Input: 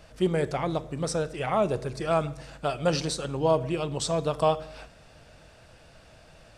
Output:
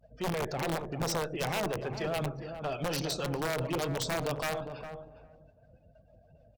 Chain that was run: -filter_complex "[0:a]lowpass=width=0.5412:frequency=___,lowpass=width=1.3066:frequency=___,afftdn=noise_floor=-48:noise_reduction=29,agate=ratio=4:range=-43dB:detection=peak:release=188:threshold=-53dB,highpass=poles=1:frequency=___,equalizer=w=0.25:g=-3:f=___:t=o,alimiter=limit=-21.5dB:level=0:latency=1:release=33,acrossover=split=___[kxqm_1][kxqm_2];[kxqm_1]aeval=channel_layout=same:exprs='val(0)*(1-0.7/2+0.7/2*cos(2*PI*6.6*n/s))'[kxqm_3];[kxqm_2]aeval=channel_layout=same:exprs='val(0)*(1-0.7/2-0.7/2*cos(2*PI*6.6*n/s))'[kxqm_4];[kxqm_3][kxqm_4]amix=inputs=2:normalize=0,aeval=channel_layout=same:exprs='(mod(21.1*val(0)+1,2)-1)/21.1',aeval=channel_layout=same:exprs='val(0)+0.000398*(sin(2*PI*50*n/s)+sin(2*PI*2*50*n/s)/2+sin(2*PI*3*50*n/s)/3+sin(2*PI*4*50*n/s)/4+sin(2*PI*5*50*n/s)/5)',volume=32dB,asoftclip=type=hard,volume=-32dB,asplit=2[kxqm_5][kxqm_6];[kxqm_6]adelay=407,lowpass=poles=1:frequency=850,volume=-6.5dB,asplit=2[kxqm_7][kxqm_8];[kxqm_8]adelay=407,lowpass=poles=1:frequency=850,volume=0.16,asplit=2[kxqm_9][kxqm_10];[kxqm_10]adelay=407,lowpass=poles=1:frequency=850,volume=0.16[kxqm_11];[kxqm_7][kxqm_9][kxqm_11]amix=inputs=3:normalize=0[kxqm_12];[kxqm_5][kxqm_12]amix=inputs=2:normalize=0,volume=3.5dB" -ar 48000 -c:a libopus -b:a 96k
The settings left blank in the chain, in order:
7300, 7300, 95, 1300, 510